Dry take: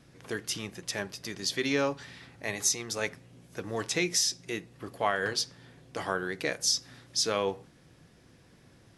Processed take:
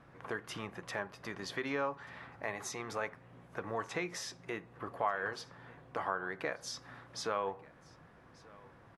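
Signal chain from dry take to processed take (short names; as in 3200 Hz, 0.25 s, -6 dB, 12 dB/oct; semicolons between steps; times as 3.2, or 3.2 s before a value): EQ curve 330 Hz 0 dB, 1100 Hz +12 dB, 5200 Hz -12 dB; compressor 2:1, threshold -35 dBFS, peak gain reduction 12 dB; on a send: echo 1.186 s -23 dB; on the sum: gain -3 dB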